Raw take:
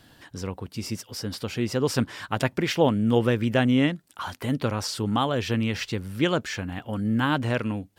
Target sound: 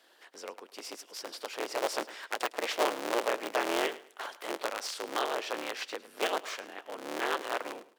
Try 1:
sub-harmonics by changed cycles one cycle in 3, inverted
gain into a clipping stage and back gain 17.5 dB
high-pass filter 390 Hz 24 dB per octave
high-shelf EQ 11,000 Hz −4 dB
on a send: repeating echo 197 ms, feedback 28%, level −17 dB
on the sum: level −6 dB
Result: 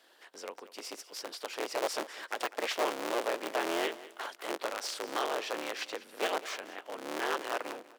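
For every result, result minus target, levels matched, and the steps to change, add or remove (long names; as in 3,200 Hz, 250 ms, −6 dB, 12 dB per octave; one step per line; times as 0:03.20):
echo 91 ms late; gain into a clipping stage and back: distortion +13 dB
change: repeating echo 106 ms, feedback 28%, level −17 dB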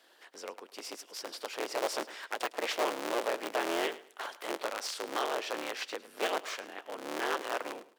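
gain into a clipping stage and back: distortion +13 dB
change: gain into a clipping stage and back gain 11 dB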